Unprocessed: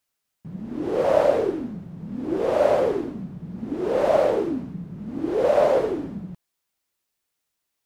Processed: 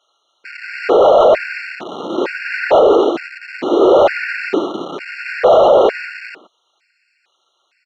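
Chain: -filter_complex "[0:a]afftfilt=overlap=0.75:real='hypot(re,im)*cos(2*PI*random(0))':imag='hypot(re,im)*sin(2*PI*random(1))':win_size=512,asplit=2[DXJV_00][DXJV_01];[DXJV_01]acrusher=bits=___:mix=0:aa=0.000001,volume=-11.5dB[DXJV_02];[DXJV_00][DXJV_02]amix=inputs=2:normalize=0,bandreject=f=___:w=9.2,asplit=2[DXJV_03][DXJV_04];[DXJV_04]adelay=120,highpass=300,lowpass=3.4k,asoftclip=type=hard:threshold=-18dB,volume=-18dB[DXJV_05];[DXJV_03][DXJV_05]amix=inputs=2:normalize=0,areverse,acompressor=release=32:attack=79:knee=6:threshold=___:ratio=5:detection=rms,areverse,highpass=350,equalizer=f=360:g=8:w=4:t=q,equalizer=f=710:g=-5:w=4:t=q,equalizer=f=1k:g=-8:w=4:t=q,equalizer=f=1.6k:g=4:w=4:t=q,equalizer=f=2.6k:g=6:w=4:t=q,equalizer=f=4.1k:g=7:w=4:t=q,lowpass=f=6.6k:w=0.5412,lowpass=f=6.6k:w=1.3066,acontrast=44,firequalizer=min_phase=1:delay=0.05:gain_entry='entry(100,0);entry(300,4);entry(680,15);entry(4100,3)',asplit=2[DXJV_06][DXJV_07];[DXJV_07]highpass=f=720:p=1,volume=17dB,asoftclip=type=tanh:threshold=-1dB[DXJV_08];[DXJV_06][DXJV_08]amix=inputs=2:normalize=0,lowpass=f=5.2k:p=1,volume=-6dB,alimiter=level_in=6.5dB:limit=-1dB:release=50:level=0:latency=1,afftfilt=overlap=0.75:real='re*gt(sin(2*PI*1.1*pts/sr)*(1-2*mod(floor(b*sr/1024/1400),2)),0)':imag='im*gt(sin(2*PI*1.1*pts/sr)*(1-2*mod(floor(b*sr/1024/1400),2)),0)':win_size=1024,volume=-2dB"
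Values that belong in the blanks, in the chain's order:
6, 1.7k, -33dB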